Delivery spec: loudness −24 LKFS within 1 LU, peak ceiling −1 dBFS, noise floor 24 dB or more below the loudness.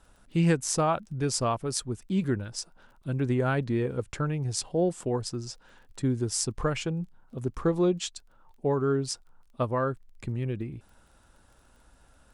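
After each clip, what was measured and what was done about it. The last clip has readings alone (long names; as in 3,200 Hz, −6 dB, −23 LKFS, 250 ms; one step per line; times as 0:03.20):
crackle rate 20 per second; integrated loudness −29.5 LKFS; sample peak −9.5 dBFS; target loudness −24.0 LKFS
→ click removal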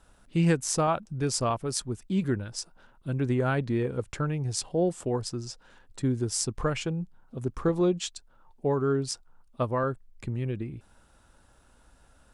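crackle rate 0.16 per second; integrated loudness −29.5 LKFS; sample peak −9.5 dBFS; target loudness −24.0 LKFS
→ level +5.5 dB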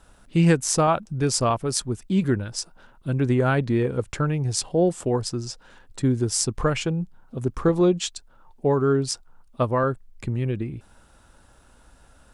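integrated loudness −24.0 LKFS; sample peak −4.0 dBFS; background noise floor −55 dBFS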